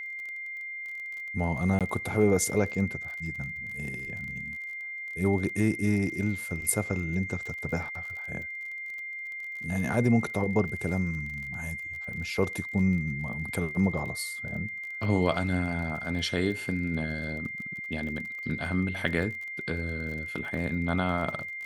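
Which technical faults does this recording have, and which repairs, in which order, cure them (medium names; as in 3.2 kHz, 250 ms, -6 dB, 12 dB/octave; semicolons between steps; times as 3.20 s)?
crackle 32 per s -37 dBFS
whine 2.1 kHz -35 dBFS
1.79–1.81 s: dropout 17 ms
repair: de-click; band-stop 2.1 kHz, Q 30; interpolate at 1.79 s, 17 ms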